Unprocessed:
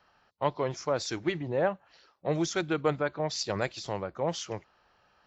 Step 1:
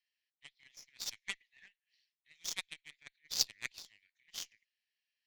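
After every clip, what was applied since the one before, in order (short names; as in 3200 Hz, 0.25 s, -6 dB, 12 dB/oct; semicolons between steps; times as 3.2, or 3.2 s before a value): steep high-pass 1800 Hz 96 dB/oct; added harmonics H 3 -13 dB, 4 -32 dB, 7 -28 dB, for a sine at -17.5 dBFS; gain +10 dB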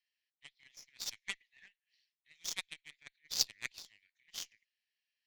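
nothing audible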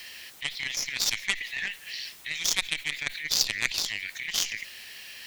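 fast leveller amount 70%; gain +5.5 dB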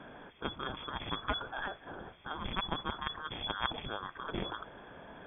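ten-band EQ 125 Hz +10 dB, 250 Hz -11 dB, 500 Hz -11 dB, 2000 Hz -7 dB; inverted band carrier 3400 Hz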